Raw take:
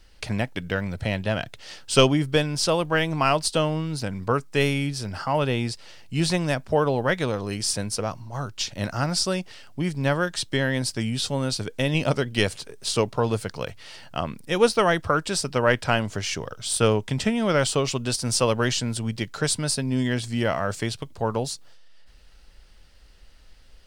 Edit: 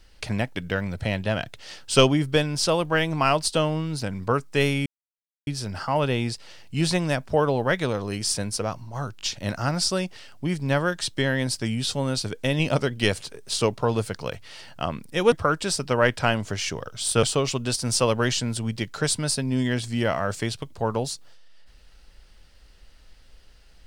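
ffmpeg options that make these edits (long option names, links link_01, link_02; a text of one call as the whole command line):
ffmpeg -i in.wav -filter_complex "[0:a]asplit=6[link_01][link_02][link_03][link_04][link_05][link_06];[link_01]atrim=end=4.86,asetpts=PTS-STARTPTS,afade=type=out:start_time=4.856:duration=0.004:curve=hsin,apad=pad_dur=0.61[link_07];[link_02]atrim=start=4.86:end=8.582,asetpts=PTS-STARTPTS,afade=type=in:duration=0.004:curve=hsin[link_08];[link_03]atrim=start=8.558:end=8.582[link_09];[link_04]atrim=start=8.558:end=14.672[link_10];[link_05]atrim=start=14.968:end=16.882[link_11];[link_06]atrim=start=17.628[link_12];[link_07][link_08]concat=n=2:v=0:a=1[link_13];[link_13][link_09]acrossfade=duration=0.004:curve1=hsin:curve2=hsin[link_14];[link_14][link_10]acrossfade=duration=0.004:curve1=hsin:curve2=hsin[link_15];[link_15][link_11]acrossfade=duration=0.004:curve1=hsin:curve2=hsin[link_16];[link_16][link_12]acrossfade=duration=0.004:curve1=hsin:curve2=hsin" out.wav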